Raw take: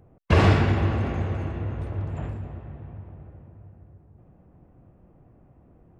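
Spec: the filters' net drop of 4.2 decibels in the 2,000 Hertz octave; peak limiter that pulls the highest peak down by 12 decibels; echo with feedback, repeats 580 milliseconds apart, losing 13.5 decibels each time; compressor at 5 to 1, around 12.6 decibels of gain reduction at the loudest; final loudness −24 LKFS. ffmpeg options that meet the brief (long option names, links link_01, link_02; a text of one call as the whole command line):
ffmpeg -i in.wav -af "equalizer=frequency=2000:width_type=o:gain=-5.5,acompressor=threshold=-27dB:ratio=5,alimiter=level_in=3dB:limit=-24dB:level=0:latency=1,volume=-3dB,aecho=1:1:580|1160:0.211|0.0444,volume=12.5dB" out.wav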